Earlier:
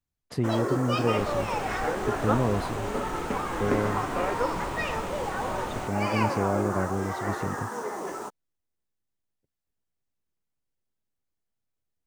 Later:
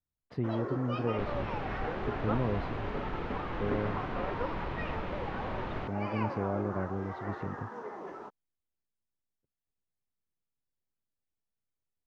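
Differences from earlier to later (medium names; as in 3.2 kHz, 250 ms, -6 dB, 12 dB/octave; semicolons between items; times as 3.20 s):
speech -5.5 dB; first sound -7.5 dB; master: add distance through air 280 m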